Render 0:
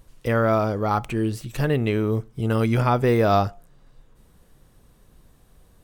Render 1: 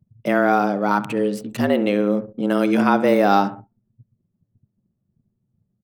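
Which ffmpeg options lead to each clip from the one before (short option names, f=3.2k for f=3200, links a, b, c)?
-filter_complex "[0:a]asplit=2[a][b];[b]adelay=66,lowpass=f=3.3k:p=1,volume=-14dB,asplit=2[c][d];[d]adelay=66,lowpass=f=3.3k:p=1,volume=0.51,asplit=2[e][f];[f]adelay=66,lowpass=f=3.3k:p=1,volume=0.51,asplit=2[g][h];[h]adelay=66,lowpass=f=3.3k:p=1,volume=0.51,asplit=2[i][j];[j]adelay=66,lowpass=f=3.3k:p=1,volume=0.51[k];[a][c][e][g][i][k]amix=inputs=6:normalize=0,afreqshift=98,anlmdn=1.58,volume=2.5dB"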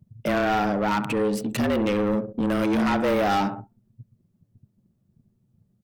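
-filter_complex "[0:a]asplit=2[a][b];[b]acompressor=threshold=-26dB:ratio=6,volume=1.5dB[c];[a][c]amix=inputs=2:normalize=0,asoftclip=type=tanh:threshold=-17dB,volume=-1.5dB"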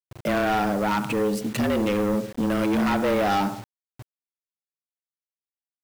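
-af "acrusher=bits=6:mix=0:aa=0.000001"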